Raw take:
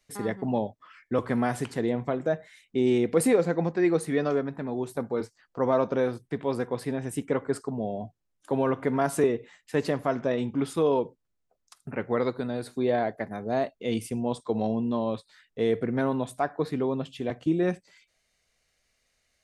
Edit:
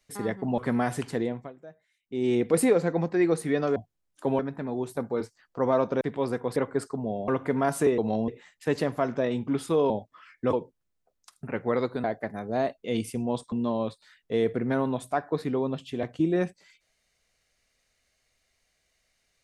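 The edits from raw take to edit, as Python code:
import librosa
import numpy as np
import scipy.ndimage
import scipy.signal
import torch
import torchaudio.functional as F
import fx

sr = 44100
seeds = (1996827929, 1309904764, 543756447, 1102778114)

y = fx.edit(x, sr, fx.move(start_s=0.58, length_s=0.63, to_s=10.97),
    fx.fade_down_up(start_s=1.8, length_s=1.2, db=-20.0, fade_s=0.36),
    fx.cut(start_s=6.01, length_s=0.27),
    fx.cut(start_s=6.83, length_s=0.47),
    fx.move(start_s=8.02, length_s=0.63, to_s=4.39),
    fx.cut(start_s=12.48, length_s=0.53),
    fx.move(start_s=14.49, length_s=0.3, to_s=9.35), tone=tone)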